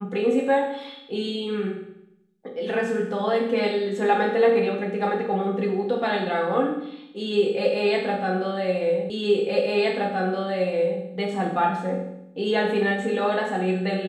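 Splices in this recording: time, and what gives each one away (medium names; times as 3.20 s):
9.10 s: repeat of the last 1.92 s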